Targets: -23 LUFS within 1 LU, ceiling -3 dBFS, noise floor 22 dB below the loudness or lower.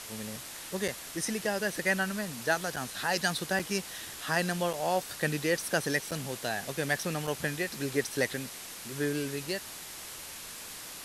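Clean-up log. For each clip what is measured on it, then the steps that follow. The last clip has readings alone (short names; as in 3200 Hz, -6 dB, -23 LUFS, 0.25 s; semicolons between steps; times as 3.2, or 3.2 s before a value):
dropouts 6; longest dropout 5.4 ms; noise floor -44 dBFS; noise floor target -54 dBFS; loudness -32.0 LUFS; peak -13.5 dBFS; loudness target -23.0 LUFS
-> interpolate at 0.88/2.76/3.59/4.73/6.11/7.27, 5.4 ms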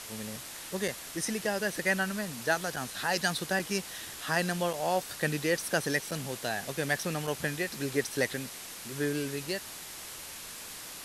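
dropouts 0; noise floor -44 dBFS; noise floor target -54 dBFS
-> noise print and reduce 10 dB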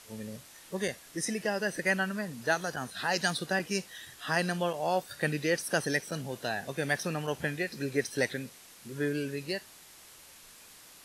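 noise floor -54 dBFS; loudness -32.0 LUFS; peak -13.5 dBFS; loudness target -23.0 LUFS
-> gain +9 dB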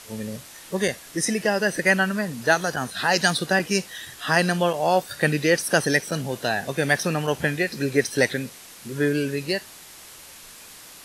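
loudness -23.0 LUFS; peak -4.5 dBFS; noise floor -45 dBFS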